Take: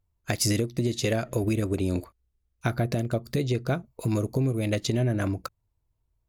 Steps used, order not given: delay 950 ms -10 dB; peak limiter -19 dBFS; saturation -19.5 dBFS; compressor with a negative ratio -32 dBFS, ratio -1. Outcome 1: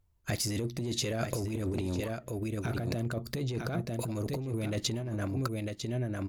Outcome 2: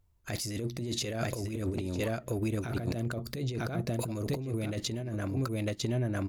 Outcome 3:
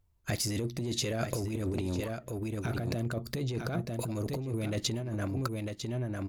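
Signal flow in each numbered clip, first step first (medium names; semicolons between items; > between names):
peak limiter > delay > saturation > compressor with a negative ratio; delay > compressor with a negative ratio > peak limiter > saturation; peak limiter > saturation > delay > compressor with a negative ratio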